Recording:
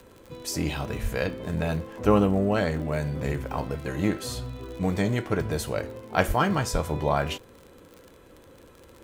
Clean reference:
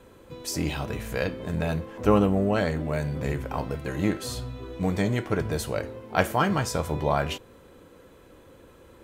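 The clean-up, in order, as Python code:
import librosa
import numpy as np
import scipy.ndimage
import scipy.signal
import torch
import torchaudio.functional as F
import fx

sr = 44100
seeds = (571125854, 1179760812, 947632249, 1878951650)

y = fx.fix_declick_ar(x, sr, threshold=6.5)
y = fx.fix_deplosive(y, sr, at_s=(1.02, 6.27, 6.72))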